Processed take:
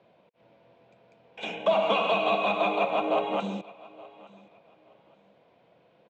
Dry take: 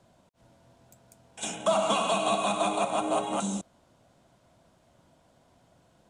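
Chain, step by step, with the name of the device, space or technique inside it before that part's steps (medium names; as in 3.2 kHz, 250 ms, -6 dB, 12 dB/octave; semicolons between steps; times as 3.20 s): 1.50–1.90 s: band-stop 1.3 kHz, Q 9.2; kitchen radio (cabinet simulation 210–3700 Hz, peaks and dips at 260 Hz -6 dB, 480 Hz +8 dB, 1.4 kHz -3 dB, 2.4 kHz +8 dB); bass shelf 430 Hz +3 dB; feedback delay 870 ms, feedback 25%, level -22 dB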